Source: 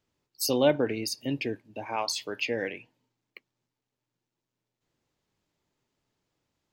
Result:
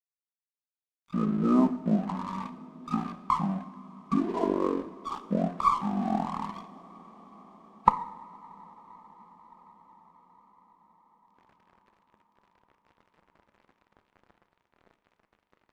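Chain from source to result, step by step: recorder AGC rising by 35 dB/s; FFT band-pass 370–3100 Hz; notches 60/120/180/240/300/360/420/480/540 Hz; harmonic-percussive split harmonic -5 dB; in parallel at +2 dB: compressor, threshold -43 dBFS, peak gain reduction 23 dB; on the sum: crossover distortion -44 dBFS; two-slope reverb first 0.34 s, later 4.6 s, from -18 dB, DRR 9.5 dB; speed mistake 78 rpm record played at 33 rpm; running maximum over 3 samples; gain +2 dB

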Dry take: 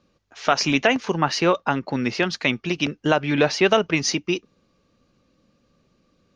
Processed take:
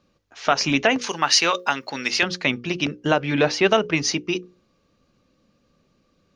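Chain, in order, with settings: 1.01–2.23 tilt +4.5 dB/oct; notches 60/120/180/240/300/360/420/480/540 Hz

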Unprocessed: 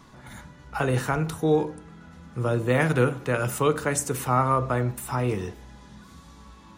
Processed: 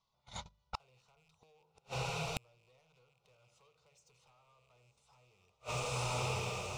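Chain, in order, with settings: rattling part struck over -32 dBFS, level -23 dBFS; gate -39 dBFS, range -42 dB; LPF 5400 Hz 24 dB/oct; tilt shelf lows -6.5 dB, about 1200 Hz; de-hum 51.67 Hz, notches 4; compressor 10:1, threshold -32 dBFS, peak gain reduction 14.5 dB; soft clip -33 dBFS, distortion -12 dB; fixed phaser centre 700 Hz, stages 4; hard clip -35.5 dBFS, distortion -24 dB; diffused feedback echo 1.033 s, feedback 51%, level -10.5 dB; flipped gate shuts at -40 dBFS, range -42 dB; gain +16.5 dB

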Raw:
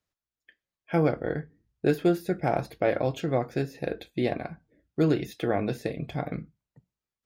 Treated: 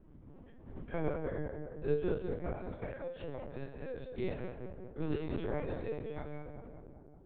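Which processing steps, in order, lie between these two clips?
stepped spectrum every 50 ms; wind noise 190 Hz -41 dBFS; 2.17–3.6 compressor 4:1, threshold -30 dBFS, peak gain reduction 9 dB; low shelf 270 Hz -3 dB; resonator 74 Hz, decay 0.4 s, harmonics all, mix 90%; darkening echo 0.193 s, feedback 68%, low-pass 1600 Hz, level -5.5 dB; LPC vocoder at 8 kHz pitch kept

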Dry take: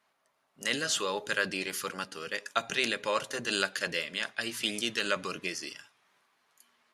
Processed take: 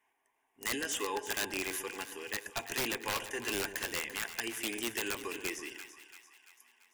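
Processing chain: fixed phaser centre 870 Hz, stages 8; wrapped overs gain 25.5 dB; split-band echo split 890 Hz, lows 0.13 s, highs 0.34 s, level -11.5 dB

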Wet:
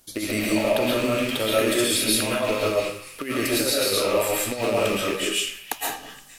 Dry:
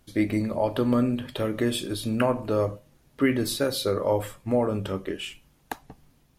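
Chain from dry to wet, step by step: rattling part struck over -38 dBFS, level -28 dBFS; tone controls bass -9 dB, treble +12 dB; negative-ratio compressor -26 dBFS, ratio -0.5; delay with a stepping band-pass 0.235 s, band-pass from 1600 Hz, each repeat 0.7 oct, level -11 dB; reverb RT60 0.50 s, pre-delay 90 ms, DRR -5.5 dB

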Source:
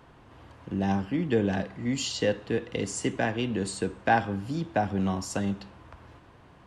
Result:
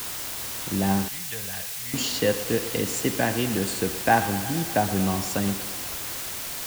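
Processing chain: thinning echo 0.118 s, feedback 76%, high-pass 170 Hz, level -14 dB; requantised 6-bit, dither triangular; 1.08–1.94 passive tone stack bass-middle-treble 10-0-10; gain +3 dB

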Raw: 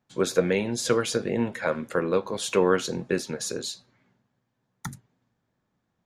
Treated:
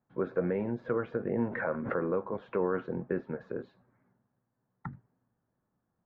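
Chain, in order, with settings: limiter -15.5 dBFS, peak gain reduction 7 dB; LPF 1600 Hz 24 dB/oct; 1.46–2.13 backwards sustainer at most 50 dB/s; gain -4 dB

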